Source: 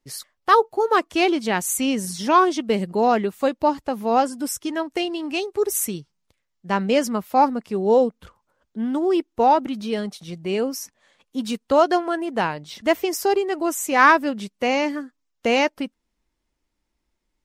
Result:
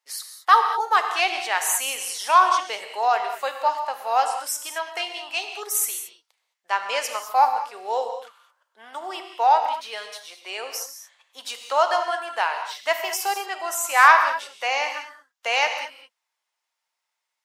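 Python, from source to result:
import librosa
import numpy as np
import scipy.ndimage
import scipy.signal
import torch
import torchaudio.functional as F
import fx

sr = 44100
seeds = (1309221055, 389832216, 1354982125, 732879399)

y = scipy.signal.sosfilt(scipy.signal.butter(4, 730.0, 'highpass', fs=sr, output='sos'), x)
y = fx.rev_gated(y, sr, seeds[0], gate_ms=240, shape='flat', drr_db=5.5)
y = y * 10.0 ** (1.0 / 20.0)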